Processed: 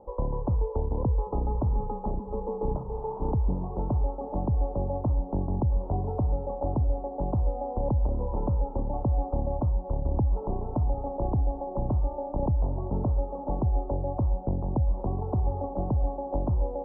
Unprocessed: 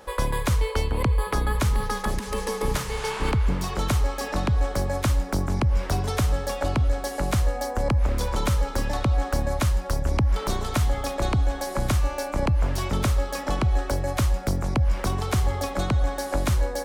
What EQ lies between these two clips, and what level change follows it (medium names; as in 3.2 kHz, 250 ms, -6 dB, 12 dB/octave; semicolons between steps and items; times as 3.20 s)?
elliptic low-pass 900 Hz, stop band 50 dB; -2.5 dB